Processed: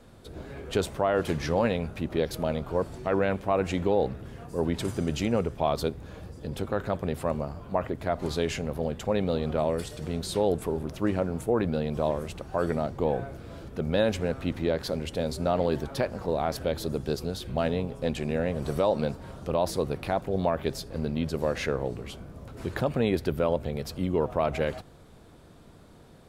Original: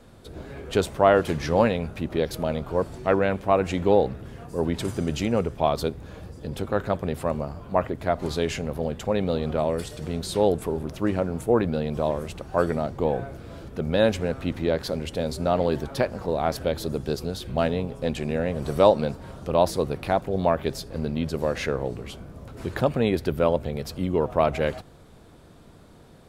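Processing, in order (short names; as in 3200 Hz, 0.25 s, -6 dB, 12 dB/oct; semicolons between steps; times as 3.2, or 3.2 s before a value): limiter -11.5 dBFS, peak gain reduction 8 dB; gain -2 dB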